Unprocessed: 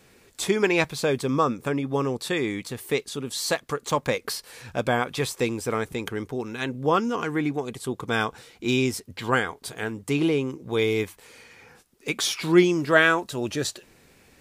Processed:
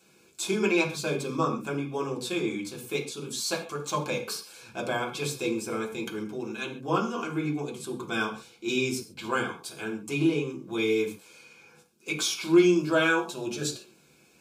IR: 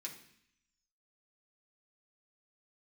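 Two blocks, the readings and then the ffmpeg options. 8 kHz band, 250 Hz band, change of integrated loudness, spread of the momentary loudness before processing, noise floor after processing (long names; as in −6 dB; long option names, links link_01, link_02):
−1.5 dB, −2.0 dB, −3.5 dB, 12 LU, −60 dBFS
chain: -filter_complex "[0:a]asuperstop=centerf=1900:order=4:qfactor=3.5[link_01];[1:a]atrim=start_sample=2205,atrim=end_sample=6615[link_02];[link_01][link_02]afir=irnorm=-1:irlink=0"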